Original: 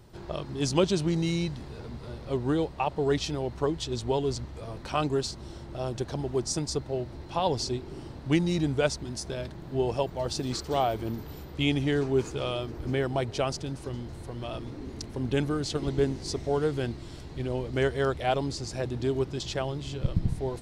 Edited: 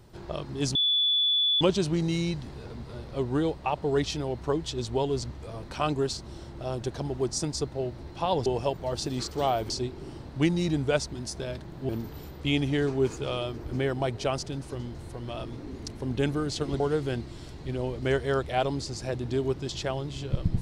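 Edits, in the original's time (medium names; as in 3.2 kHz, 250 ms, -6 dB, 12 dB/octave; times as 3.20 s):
0.75 s: add tone 3.45 kHz -21 dBFS 0.86 s
9.79–11.03 s: move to 7.60 s
15.94–16.51 s: delete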